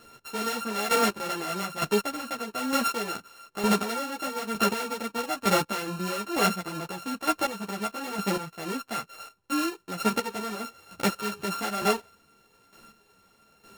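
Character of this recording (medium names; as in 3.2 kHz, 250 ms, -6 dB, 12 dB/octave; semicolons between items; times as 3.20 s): a buzz of ramps at a fixed pitch in blocks of 32 samples; chopped level 1.1 Hz, depth 65%, duty 20%; a shimmering, thickened sound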